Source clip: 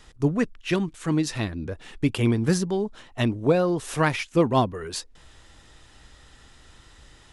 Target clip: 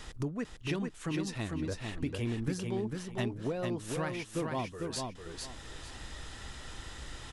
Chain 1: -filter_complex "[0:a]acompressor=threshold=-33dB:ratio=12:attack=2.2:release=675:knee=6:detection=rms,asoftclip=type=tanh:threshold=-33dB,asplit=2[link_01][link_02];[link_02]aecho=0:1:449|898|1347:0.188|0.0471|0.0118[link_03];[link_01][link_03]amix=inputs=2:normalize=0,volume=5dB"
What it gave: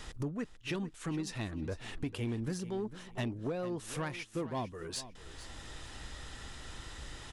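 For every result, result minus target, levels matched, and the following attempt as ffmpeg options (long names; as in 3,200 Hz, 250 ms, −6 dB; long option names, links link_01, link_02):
soft clipping: distortion +13 dB; echo-to-direct −10.5 dB
-filter_complex "[0:a]acompressor=threshold=-33dB:ratio=12:attack=2.2:release=675:knee=6:detection=rms,asoftclip=type=tanh:threshold=-25dB,asplit=2[link_01][link_02];[link_02]aecho=0:1:449|898|1347:0.188|0.0471|0.0118[link_03];[link_01][link_03]amix=inputs=2:normalize=0,volume=5dB"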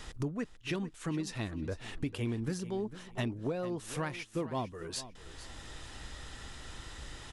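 echo-to-direct −10.5 dB
-filter_complex "[0:a]acompressor=threshold=-33dB:ratio=12:attack=2.2:release=675:knee=6:detection=rms,asoftclip=type=tanh:threshold=-25dB,asplit=2[link_01][link_02];[link_02]aecho=0:1:449|898|1347:0.631|0.158|0.0394[link_03];[link_01][link_03]amix=inputs=2:normalize=0,volume=5dB"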